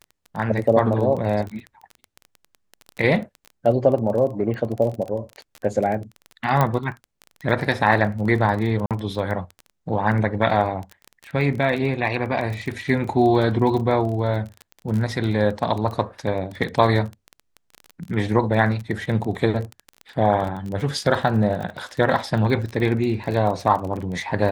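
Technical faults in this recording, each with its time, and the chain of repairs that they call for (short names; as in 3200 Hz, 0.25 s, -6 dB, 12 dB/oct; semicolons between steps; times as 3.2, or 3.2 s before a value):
crackle 22/s -27 dBFS
6.61 pop -7 dBFS
8.86–8.91 gap 47 ms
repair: de-click; interpolate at 8.86, 47 ms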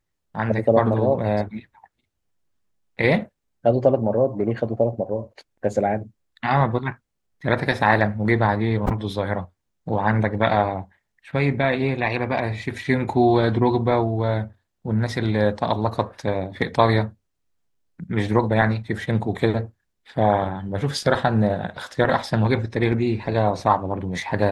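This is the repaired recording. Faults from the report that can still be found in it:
none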